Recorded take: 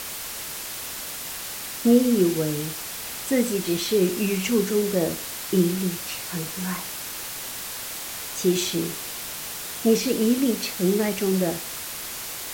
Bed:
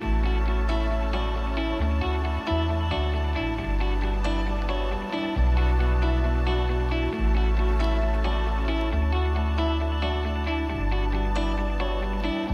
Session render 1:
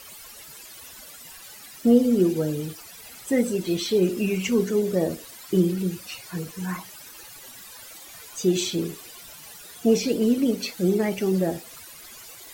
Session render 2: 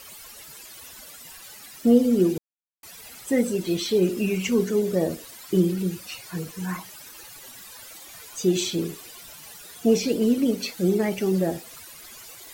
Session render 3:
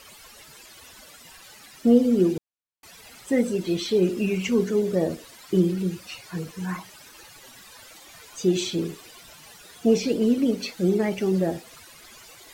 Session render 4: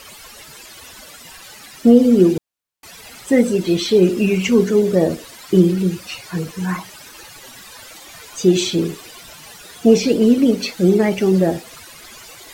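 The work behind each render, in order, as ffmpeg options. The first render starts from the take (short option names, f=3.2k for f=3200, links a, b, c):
-af "afftdn=nr=15:nf=-34"
-filter_complex "[0:a]asplit=3[a][b][c];[a]atrim=end=2.38,asetpts=PTS-STARTPTS,afade=t=out:st=2.376:d=0.004:c=hsin[d];[b]atrim=start=2.38:end=2.83,asetpts=PTS-STARTPTS,volume=0[e];[c]atrim=start=2.83,asetpts=PTS-STARTPTS,afade=t=in:d=0.004:c=hsin[f];[d][e][f]concat=n=3:v=0:a=1"
-af "highshelf=f=9.2k:g=-12"
-af "volume=8dB,alimiter=limit=-1dB:level=0:latency=1"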